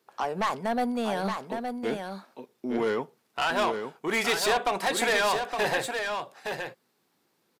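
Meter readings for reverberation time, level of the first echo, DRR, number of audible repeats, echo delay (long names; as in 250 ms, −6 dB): no reverb audible, −6.0 dB, no reverb audible, 1, 866 ms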